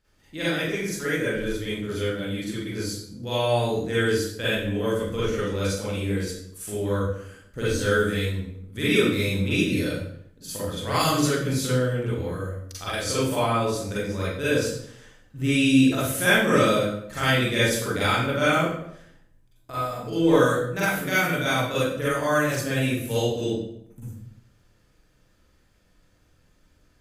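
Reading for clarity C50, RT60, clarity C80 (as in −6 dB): −3.5 dB, 0.70 s, 3.0 dB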